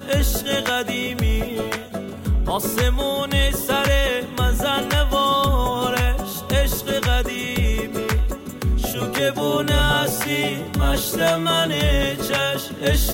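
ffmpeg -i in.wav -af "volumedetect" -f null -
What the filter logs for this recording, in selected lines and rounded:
mean_volume: -20.3 dB
max_volume: -8.7 dB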